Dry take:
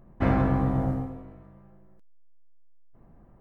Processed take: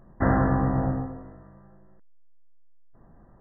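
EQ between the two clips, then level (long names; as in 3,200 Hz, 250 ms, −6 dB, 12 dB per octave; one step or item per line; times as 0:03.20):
linear-phase brick-wall low-pass 2,000 Hz
tilt shelving filter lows −3 dB
+3.5 dB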